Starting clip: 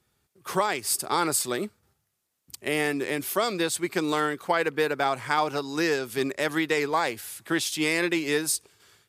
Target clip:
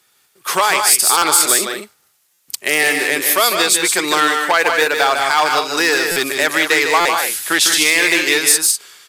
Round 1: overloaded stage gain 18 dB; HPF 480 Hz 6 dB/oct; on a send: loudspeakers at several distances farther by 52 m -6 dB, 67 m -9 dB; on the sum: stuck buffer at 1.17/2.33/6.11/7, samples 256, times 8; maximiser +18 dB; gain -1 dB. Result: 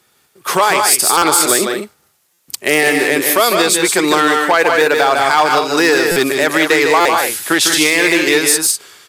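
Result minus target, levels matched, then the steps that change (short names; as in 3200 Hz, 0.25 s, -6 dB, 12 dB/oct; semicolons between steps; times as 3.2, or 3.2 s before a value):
500 Hz band +4.5 dB
change: HPF 1500 Hz 6 dB/oct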